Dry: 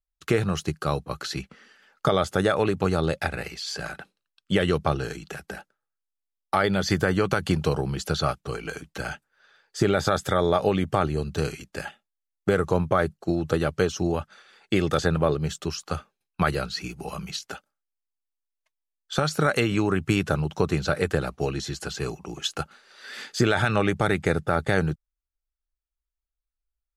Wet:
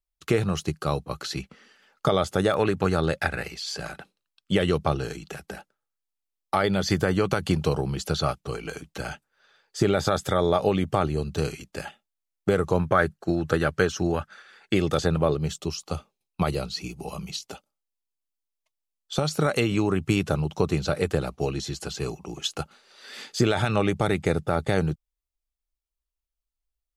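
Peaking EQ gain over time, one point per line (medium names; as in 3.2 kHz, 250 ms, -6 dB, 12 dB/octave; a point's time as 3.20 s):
peaking EQ 1.6 kHz 0.6 oct
-4 dB
from 2.54 s +3.5 dB
from 3.44 s -4 dB
from 12.79 s +6 dB
from 14.74 s -5.5 dB
from 15.57 s -13.5 dB
from 19.28 s -7 dB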